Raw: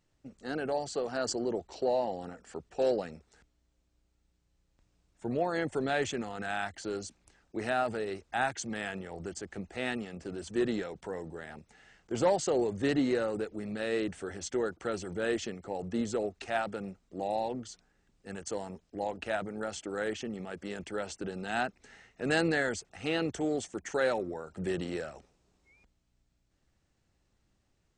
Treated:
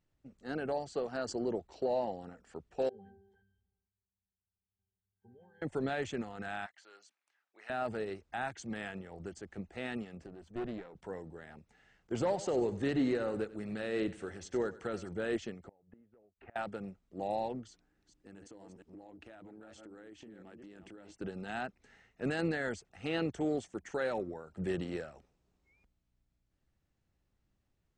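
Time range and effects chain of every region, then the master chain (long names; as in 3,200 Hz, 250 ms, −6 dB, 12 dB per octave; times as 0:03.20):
0:02.89–0:05.62: resonances in every octave G, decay 0.36 s + level that may fall only so fast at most 47 dB per second
0:06.66–0:07.70: high-pass filter 1,300 Hz + high-shelf EQ 3,900 Hz −11 dB
0:10.26–0:10.95: high-shelf EQ 3,000 Hz −10.5 dB + tube saturation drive 31 dB, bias 0.8
0:12.12–0:15.09: repeating echo 94 ms, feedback 39%, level −15 dB + one half of a high-frequency compander encoder only
0:15.68–0:16.56: low-pass filter 2,200 Hz 24 dB per octave + gate with flip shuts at −30 dBFS, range −27 dB
0:17.68–0:21.14: delay that plays each chunk backwards 229 ms, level −9 dB + parametric band 310 Hz +11.5 dB 0.32 octaves + downward compressor 10 to 1, threshold −42 dBFS
whole clip: bass and treble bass +3 dB, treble −5 dB; brickwall limiter −22.5 dBFS; expander for the loud parts 1.5 to 1, over −41 dBFS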